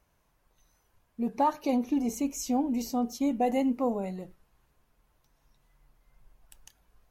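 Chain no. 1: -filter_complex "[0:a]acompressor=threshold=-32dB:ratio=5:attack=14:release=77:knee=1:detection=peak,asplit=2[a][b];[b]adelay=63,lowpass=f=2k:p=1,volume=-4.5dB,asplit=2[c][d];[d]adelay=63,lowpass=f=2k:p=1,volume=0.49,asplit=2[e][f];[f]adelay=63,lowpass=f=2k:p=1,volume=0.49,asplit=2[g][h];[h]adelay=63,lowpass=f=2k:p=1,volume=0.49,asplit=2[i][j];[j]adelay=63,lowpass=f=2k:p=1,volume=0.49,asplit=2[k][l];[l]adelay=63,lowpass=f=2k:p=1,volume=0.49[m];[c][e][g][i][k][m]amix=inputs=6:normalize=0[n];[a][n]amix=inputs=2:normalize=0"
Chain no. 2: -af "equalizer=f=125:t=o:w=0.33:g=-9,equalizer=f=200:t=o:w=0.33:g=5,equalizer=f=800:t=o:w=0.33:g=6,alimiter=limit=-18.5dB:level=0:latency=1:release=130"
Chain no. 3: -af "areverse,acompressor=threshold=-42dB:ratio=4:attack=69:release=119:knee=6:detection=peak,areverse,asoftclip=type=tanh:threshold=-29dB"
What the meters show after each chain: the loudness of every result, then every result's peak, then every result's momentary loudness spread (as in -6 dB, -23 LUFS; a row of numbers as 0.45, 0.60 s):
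-33.5, -29.5, -40.5 LUFS; -21.5, -18.5, -30.0 dBFS; 6, 7, 17 LU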